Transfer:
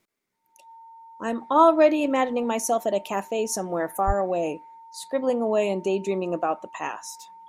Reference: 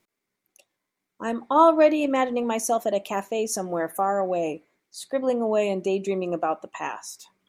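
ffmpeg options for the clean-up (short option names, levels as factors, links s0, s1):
-filter_complex "[0:a]bandreject=f=910:w=30,asplit=3[s0][s1][s2];[s0]afade=t=out:st=4.06:d=0.02[s3];[s1]highpass=f=140:w=0.5412,highpass=f=140:w=1.3066,afade=t=in:st=4.06:d=0.02,afade=t=out:st=4.18:d=0.02[s4];[s2]afade=t=in:st=4.18:d=0.02[s5];[s3][s4][s5]amix=inputs=3:normalize=0"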